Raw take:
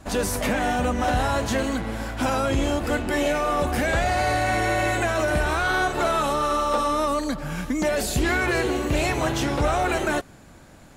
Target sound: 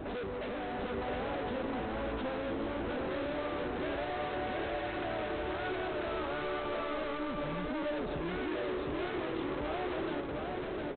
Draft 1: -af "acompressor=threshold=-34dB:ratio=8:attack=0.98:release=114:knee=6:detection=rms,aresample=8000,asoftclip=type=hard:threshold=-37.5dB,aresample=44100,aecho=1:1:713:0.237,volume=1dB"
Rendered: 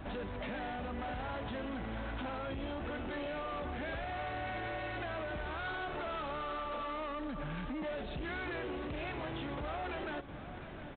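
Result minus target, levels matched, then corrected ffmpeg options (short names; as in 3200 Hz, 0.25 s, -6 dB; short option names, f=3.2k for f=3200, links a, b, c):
echo-to-direct -10.5 dB; 500 Hz band -2.5 dB
-af "acompressor=threshold=-34dB:ratio=8:attack=0.98:release=114:knee=6:detection=rms,equalizer=f=410:t=o:w=1.2:g=15,aresample=8000,asoftclip=type=hard:threshold=-37.5dB,aresample=44100,aecho=1:1:713:0.794,volume=1dB"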